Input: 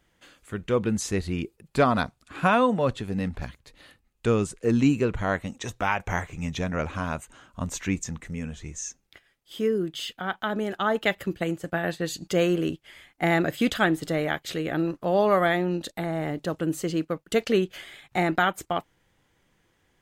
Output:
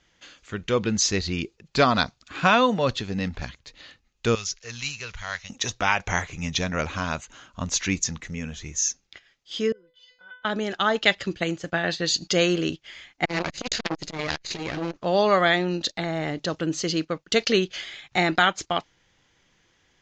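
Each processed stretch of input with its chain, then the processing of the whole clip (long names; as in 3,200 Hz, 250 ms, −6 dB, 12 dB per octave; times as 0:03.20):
0:04.35–0:05.50: one scale factor per block 7 bits + guitar amp tone stack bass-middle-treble 10-0-10 + bad sample-rate conversion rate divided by 3×, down none, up filtered
0:09.72–0:10.45: low-pass filter 2,200 Hz + tuned comb filter 500 Hz, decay 0.35 s, mix 100%
0:13.25–0:14.96: lower of the sound and its delayed copy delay 0.46 ms + high-shelf EQ 11,000 Hz +7 dB + saturating transformer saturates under 1,100 Hz
whole clip: dynamic equaliser 4,600 Hz, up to +6 dB, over −50 dBFS, Q 2; Butterworth low-pass 6,900 Hz 72 dB per octave; high-shelf EQ 2,100 Hz +10.5 dB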